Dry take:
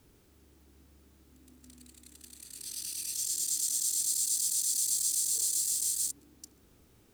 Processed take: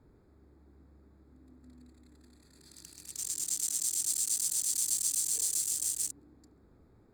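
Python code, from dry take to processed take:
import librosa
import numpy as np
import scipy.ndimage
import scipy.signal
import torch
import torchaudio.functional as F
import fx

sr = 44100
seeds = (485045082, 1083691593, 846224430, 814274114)

y = fx.wiener(x, sr, points=15)
y = F.gain(torch.from_numpy(y), 1.5).numpy()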